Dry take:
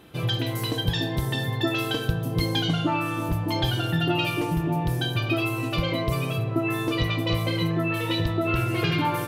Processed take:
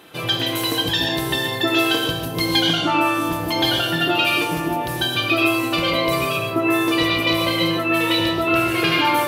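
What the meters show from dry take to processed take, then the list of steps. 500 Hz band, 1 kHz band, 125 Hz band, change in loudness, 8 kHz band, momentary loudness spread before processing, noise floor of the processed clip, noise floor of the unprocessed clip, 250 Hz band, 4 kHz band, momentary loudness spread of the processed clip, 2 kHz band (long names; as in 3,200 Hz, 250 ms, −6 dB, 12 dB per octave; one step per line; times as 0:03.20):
+6.5 dB, +8.5 dB, −4.5 dB, +6.5 dB, +9.5 dB, 3 LU, −26 dBFS, −30 dBFS, +5.0 dB, +10.0 dB, 5 LU, +9.5 dB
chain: high-pass filter 570 Hz 6 dB per octave
reverb whose tail is shaped and stops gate 170 ms rising, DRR 2.5 dB
level +8 dB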